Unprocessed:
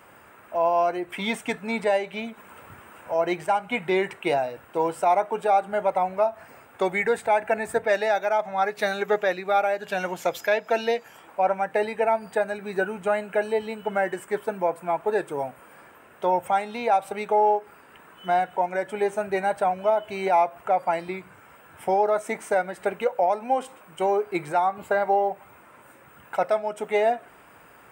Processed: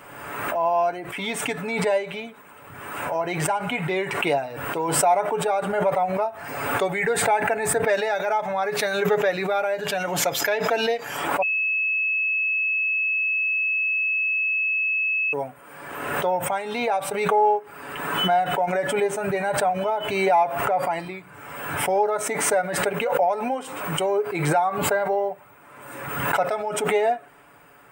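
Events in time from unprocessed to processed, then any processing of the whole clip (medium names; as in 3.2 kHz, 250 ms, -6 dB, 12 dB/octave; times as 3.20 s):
11.42–15.33 s: bleep 2.59 kHz -22 dBFS
20.43–21.05 s: transient shaper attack -5 dB, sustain +5 dB
whole clip: comb 7 ms, depth 50%; swell ahead of each attack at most 41 dB/s; trim -1.5 dB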